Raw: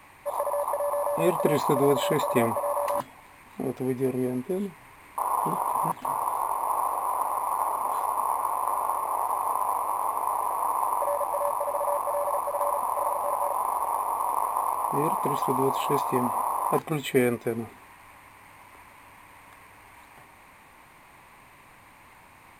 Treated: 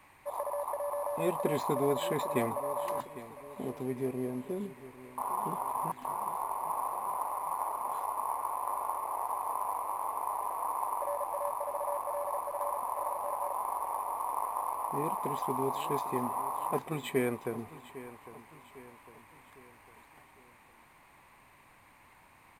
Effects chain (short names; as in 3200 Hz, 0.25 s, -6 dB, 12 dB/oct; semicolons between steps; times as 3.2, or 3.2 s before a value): feedback echo 0.804 s, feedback 48%, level -16 dB; gain -7.5 dB